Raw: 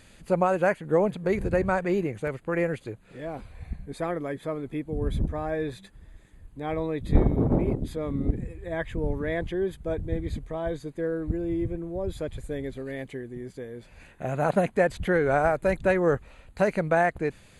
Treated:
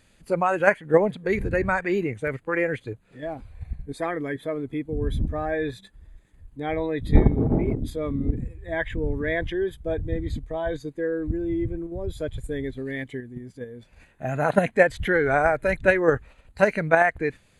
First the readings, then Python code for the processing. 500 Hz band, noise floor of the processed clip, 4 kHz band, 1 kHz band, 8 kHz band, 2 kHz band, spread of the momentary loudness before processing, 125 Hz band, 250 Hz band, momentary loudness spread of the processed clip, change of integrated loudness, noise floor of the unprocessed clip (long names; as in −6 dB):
+2.0 dB, −59 dBFS, +4.0 dB, +2.5 dB, can't be measured, +7.0 dB, 14 LU, +1.5 dB, +1.5 dB, 15 LU, +2.5 dB, −54 dBFS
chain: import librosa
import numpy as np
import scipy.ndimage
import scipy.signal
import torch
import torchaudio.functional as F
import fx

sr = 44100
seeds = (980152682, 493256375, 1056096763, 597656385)

p1 = fx.noise_reduce_blind(x, sr, reduce_db=8)
p2 = fx.dynamic_eq(p1, sr, hz=1900.0, q=0.87, threshold_db=-43.0, ratio=4.0, max_db=5)
p3 = fx.level_steps(p2, sr, step_db=19)
y = p2 + F.gain(torch.from_numpy(p3), 0.0).numpy()